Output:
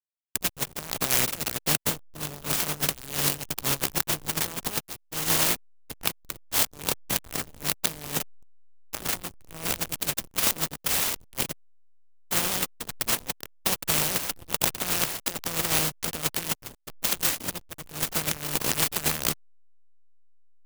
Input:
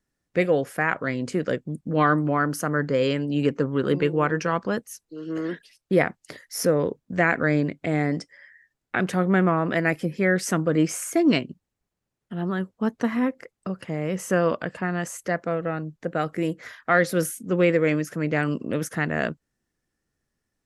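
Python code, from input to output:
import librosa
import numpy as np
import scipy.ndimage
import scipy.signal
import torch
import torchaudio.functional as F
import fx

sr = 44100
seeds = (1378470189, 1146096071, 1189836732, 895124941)

y = fx.spec_flatten(x, sr, power=0.17)
y = fx.over_compress(y, sr, threshold_db=-29.0, ratio=-0.5)
y = fx.dynamic_eq(y, sr, hz=150.0, q=3.7, threshold_db=-54.0, ratio=4.0, max_db=6)
y = fx.backlash(y, sr, play_db=-24.5)
y = fx.high_shelf_res(y, sr, hz=2500.0, db=8.0, q=1.5)
y = fx.clock_jitter(y, sr, seeds[0], jitter_ms=0.078)
y = y * librosa.db_to_amplitude(-1.5)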